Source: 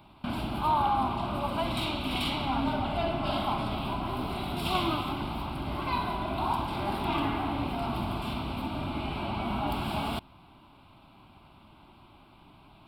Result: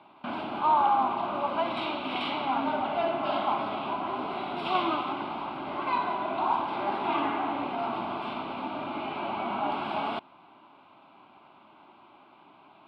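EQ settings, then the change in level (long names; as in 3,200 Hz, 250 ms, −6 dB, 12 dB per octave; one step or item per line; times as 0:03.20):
band-pass filter 350–2,400 Hz
+3.5 dB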